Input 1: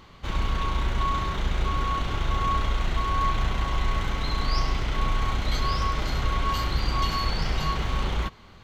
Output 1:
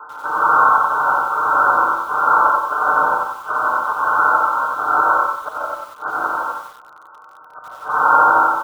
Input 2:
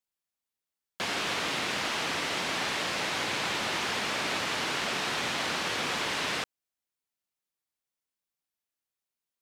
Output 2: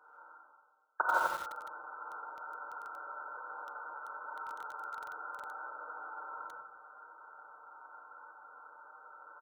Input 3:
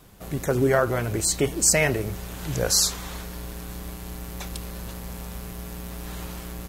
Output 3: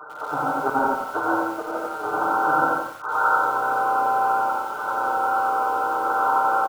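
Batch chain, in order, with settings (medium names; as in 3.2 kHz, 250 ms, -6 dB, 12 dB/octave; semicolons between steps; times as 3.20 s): comb filter that takes the minimum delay 2.2 ms; high-pass 1.2 kHz 12 dB/octave; comb 6.6 ms, depth 78%; reverse; upward compressor, threshold -42 dBFS; reverse; inverted gate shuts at -24 dBFS, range -31 dB; brick-wall FIR low-pass 1.6 kHz; on a send: multi-tap echo 48/91/158/191 ms -11.5/-7.5/-10.5/-12 dB; on the sum: gated-style reverb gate 180 ms rising, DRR -4 dB; loudness maximiser +24 dB; bit-crushed delay 91 ms, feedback 35%, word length 6-bit, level -6 dB; trim -4 dB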